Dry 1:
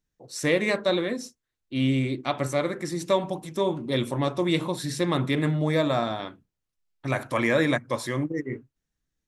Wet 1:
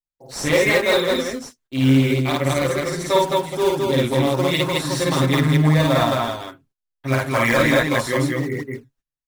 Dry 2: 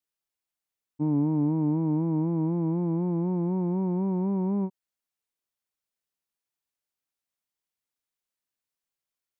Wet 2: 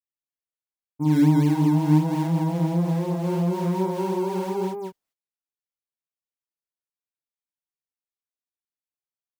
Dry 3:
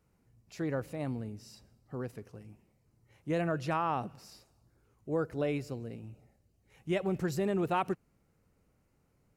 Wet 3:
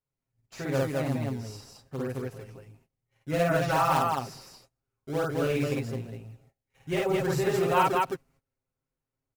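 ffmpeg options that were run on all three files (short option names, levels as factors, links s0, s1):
-filter_complex "[0:a]agate=range=0.0708:threshold=0.001:ratio=16:detection=peak,equalizer=f=190:t=o:w=2.8:g=-6,aecho=1:1:7.5:0.94,asplit=2[s0][s1];[s1]acrusher=samples=14:mix=1:aa=0.000001:lfo=1:lforange=22.4:lforate=2.8,volume=0.501[s2];[s0][s2]amix=inputs=2:normalize=0,aecho=1:1:52.48|215.7:1|0.891"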